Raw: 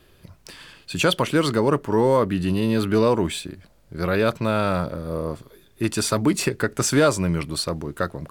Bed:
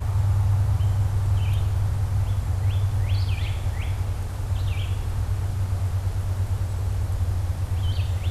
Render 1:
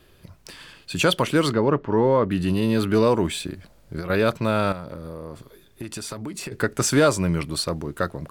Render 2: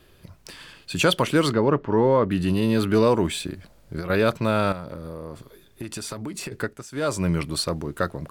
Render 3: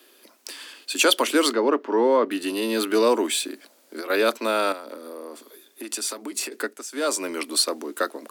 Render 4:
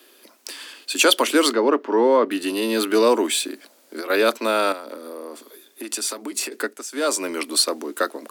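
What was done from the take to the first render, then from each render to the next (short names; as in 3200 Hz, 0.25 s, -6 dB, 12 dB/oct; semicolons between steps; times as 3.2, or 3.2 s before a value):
1.53–2.31 air absorption 230 m; 3.4–4.1 negative-ratio compressor -29 dBFS; 4.72–6.52 compressor 10:1, threshold -29 dBFS
6.47–7.28 dip -20 dB, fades 0.36 s
steep high-pass 240 Hz 72 dB/oct; high shelf 3900 Hz +9.5 dB
gain +2.5 dB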